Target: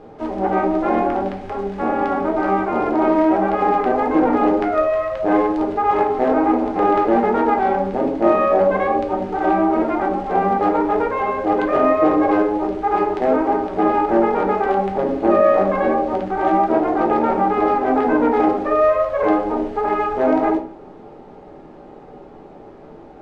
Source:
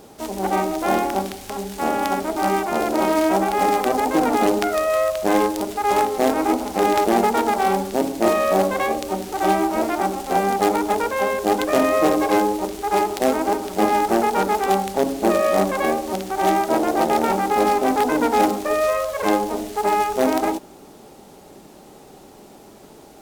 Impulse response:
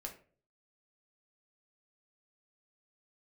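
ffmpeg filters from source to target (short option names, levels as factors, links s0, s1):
-filter_complex "[0:a]lowpass=1800,asplit=2[s0][s1];[s1]alimiter=limit=0.168:level=0:latency=1,volume=1.12[s2];[s0][s2]amix=inputs=2:normalize=0[s3];[1:a]atrim=start_sample=2205,asetrate=42777,aresample=44100[s4];[s3][s4]afir=irnorm=-1:irlink=0"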